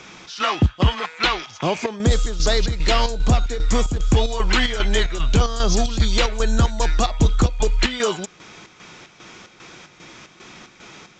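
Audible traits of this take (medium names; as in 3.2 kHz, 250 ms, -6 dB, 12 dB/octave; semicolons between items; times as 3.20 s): chopped level 2.5 Hz, depth 60%, duty 65%; µ-law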